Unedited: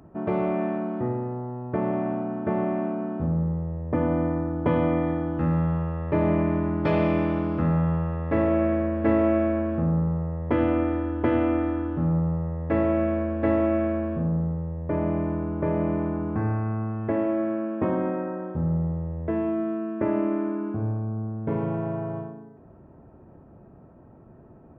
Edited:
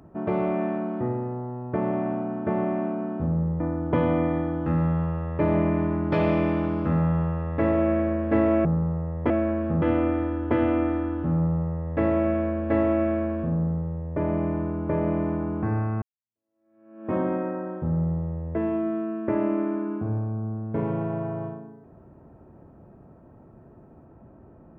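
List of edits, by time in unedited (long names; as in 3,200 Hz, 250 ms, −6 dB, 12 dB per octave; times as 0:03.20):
0:03.60–0:04.33: remove
0:09.38–0:09.90: move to 0:10.55
0:16.75–0:17.87: fade in exponential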